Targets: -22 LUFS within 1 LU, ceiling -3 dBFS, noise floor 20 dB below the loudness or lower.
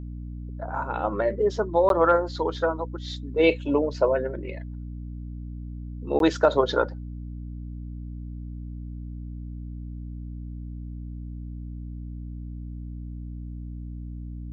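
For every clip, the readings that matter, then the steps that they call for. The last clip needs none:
dropouts 2; longest dropout 12 ms; hum 60 Hz; harmonics up to 300 Hz; hum level -33 dBFS; loudness -28.5 LUFS; peak -7.5 dBFS; loudness target -22.0 LUFS
-> interpolate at 1.89/6.19, 12 ms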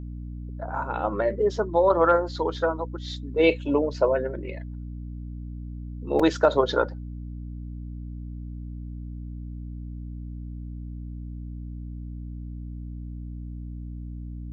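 dropouts 0; hum 60 Hz; harmonics up to 300 Hz; hum level -33 dBFS
-> de-hum 60 Hz, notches 5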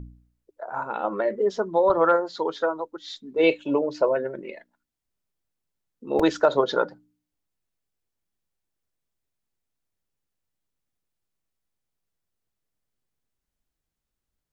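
hum none; loudness -24.0 LUFS; peak -7.5 dBFS; loudness target -22.0 LUFS
-> gain +2 dB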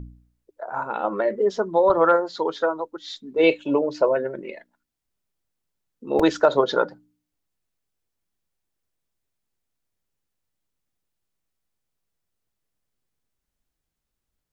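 loudness -22.0 LUFS; peak -5.5 dBFS; noise floor -82 dBFS

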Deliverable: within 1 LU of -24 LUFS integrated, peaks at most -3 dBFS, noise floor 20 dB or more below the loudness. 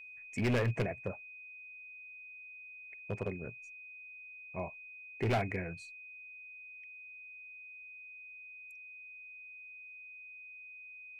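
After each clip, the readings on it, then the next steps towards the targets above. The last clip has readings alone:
clipped 0.8%; flat tops at -26.5 dBFS; steady tone 2500 Hz; tone level -48 dBFS; loudness -41.0 LUFS; peak -26.5 dBFS; loudness target -24.0 LUFS
-> clip repair -26.5 dBFS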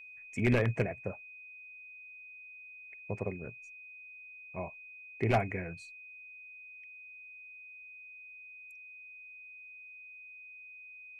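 clipped 0.0%; steady tone 2500 Hz; tone level -48 dBFS
-> notch 2500 Hz, Q 30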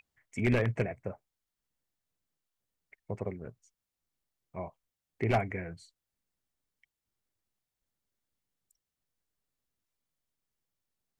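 steady tone none; loudness -33.5 LUFS; peak -17.0 dBFS; loudness target -24.0 LUFS
-> gain +9.5 dB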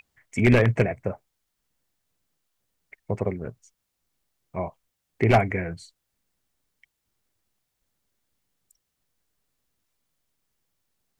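loudness -24.5 LUFS; peak -7.5 dBFS; noise floor -80 dBFS

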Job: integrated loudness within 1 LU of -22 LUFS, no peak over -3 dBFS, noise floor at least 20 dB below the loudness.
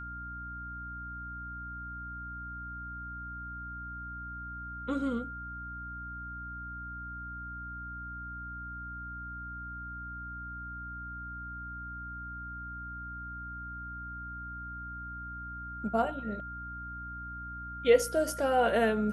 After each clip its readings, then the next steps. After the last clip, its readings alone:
hum 60 Hz; harmonics up to 300 Hz; hum level -43 dBFS; steady tone 1400 Hz; tone level -40 dBFS; loudness -36.0 LUFS; peak -12.0 dBFS; loudness target -22.0 LUFS
-> de-hum 60 Hz, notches 5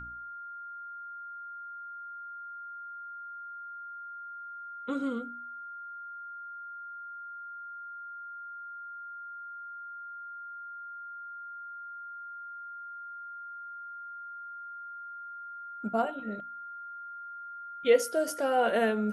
hum none; steady tone 1400 Hz; tone level -40 dBFS
-> notch 1400 Hz, Q 30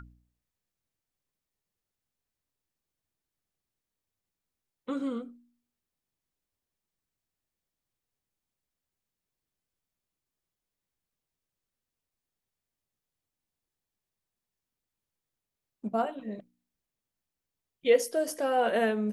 steady tone none; loudness -29.0 LUFS; peak -12.0 dBFS; loudness target -22.0 LUFS
-> gain +7 dB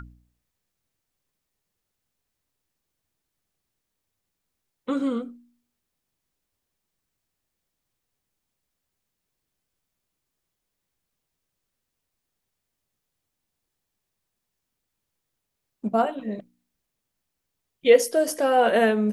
loudness -22.0 LUFS; peak -5.0 dBFS; noise floor -82 dBFS

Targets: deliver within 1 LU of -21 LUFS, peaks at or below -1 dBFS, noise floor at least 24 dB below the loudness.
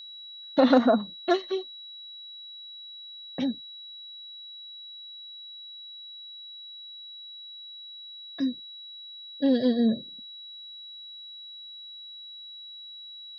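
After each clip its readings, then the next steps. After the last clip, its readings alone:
steady tone 3900 Hz; tone level -41 dBFS; loudness -31.5 LUFS; peak -8.0 dBFS; loudness target -21.0 LUFS
-> notch 3900 Hz, Q 30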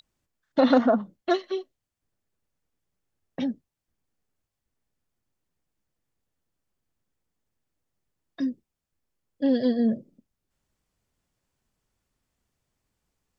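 steady tone none; loudness -25.5 LUFS; peak -8.0 dBFS; loudness target -21.0 LUFS
-> gain +4.5 dB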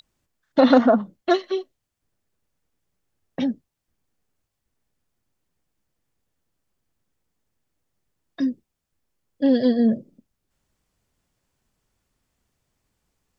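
loudness -21.0 LUFS; peak -3.5 dBFS; noise floor -81 dBFS

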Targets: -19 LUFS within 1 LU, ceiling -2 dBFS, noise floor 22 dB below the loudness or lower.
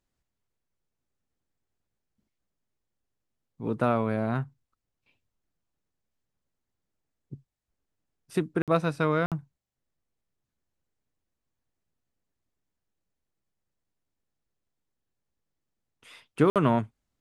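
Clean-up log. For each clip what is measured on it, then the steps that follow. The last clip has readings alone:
dropouts 3; longest dropout 57 ms; loudness -27.5 LUFS; peak -9.5 dBFS; loudness target -19.0 LUFS
-> interpolate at 8.62/9.26/16.5, 57 ms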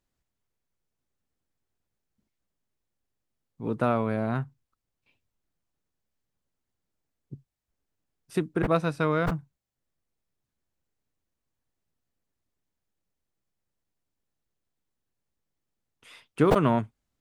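dropouts 0; loudness -27.0 LUFS; peak -9.0 dBFS; loudness target -19.0 LUFS
-> gain +8 dB; limiter -2 dBFS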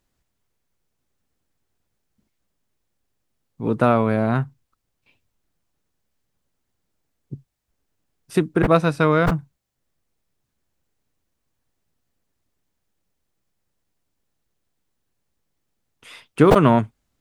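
loudness -19.0 LUFS; peak -2.0 dBFS; noise floor -77 dBFS

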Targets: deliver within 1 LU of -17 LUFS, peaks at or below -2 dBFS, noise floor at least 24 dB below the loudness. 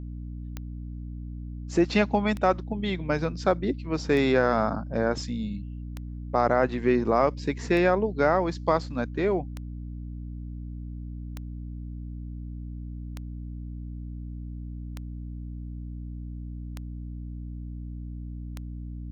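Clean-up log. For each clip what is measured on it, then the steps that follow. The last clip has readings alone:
clicks 11; hum 60 Hz; harmonics up to 300 Hz; hum level -34 dBFS; loudness -29.0 LUFS; peak -8.5 dBFS; loudness target -17.0 LUFS
-> de-click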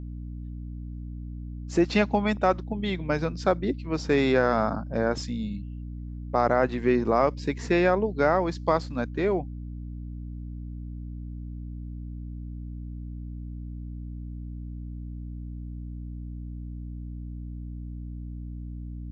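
clicks 0; hum 60 Hz; harmonics up to 300 Hz; hum level -34 dBFS
-> de-hum 60 Hz, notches 5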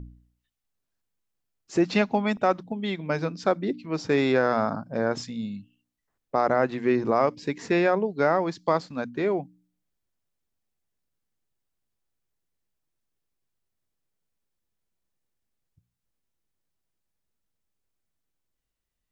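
hum none; loudness -25.5 LUFS; peak -8.5 dBFS; loudness target -17.0 LUFS
-> gain +8.5 dB; limiter -2 dBFS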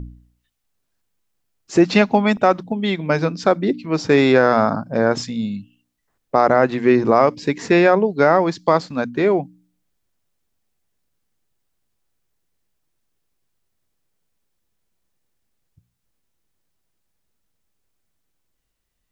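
loudness -17.5 LUFS; peak -2.0 dBFS; noise floor -73 dBFS

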